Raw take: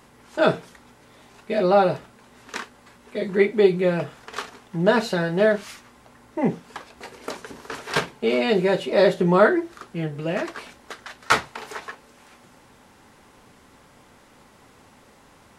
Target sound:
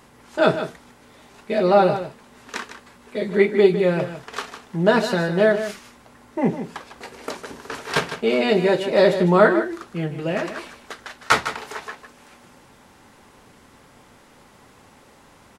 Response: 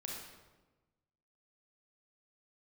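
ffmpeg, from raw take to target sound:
-af "aecho=1:1:154:0.299,volume=1.5dB"

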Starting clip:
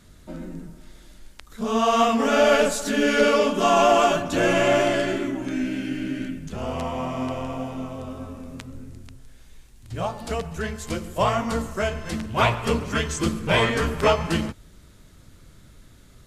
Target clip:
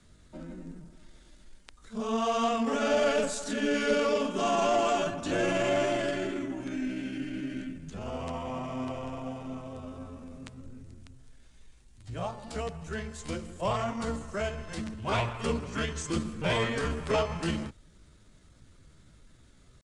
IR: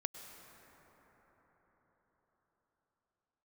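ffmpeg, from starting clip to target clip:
-filter_complex "[0:a]acrossover=split=200|640|3200[a][b][c][d];[c]asoftclip=type=tanh:threshold=-20.5dB[e];[a][b][e][d]amix=inputs=4:normalize=0,atempo=0.82,aresample=22050,aresample=44100,volume=-7dB"

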